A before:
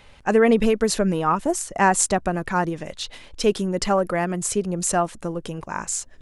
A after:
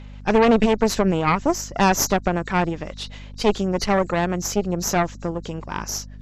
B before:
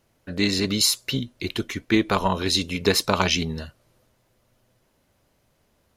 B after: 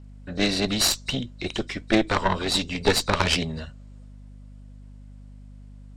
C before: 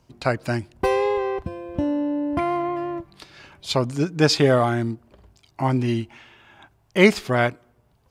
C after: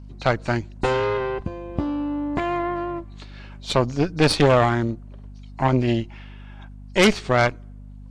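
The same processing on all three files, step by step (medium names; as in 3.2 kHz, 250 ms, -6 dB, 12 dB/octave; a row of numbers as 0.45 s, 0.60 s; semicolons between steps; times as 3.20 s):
knee-point frequency compression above 3.7 kHz 1.5:1; Chebyshev shaper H 5 -18 dB, 8 -12 dB, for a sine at -0.5 dBFS; hum 50 Hz, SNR 17 dB; trim -4.5 dB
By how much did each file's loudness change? +0.5 LU, -1.0 LU, +0.5 LU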